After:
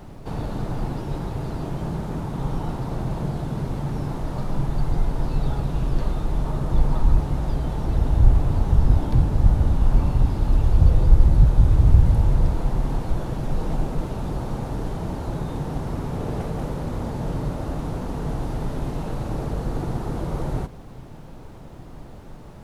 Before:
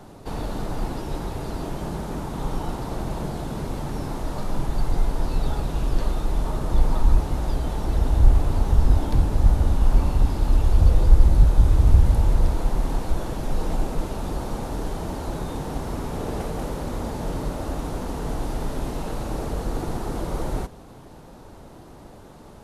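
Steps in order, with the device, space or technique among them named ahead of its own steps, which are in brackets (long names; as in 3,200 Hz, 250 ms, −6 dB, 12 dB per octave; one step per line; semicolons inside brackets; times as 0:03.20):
car interior (parametric band 130 Hz +8 dB 0.98 octaves; high-shelf EQ 4,400 Hz −7 dB; brown noise bed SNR 22 dB)
level −1 dB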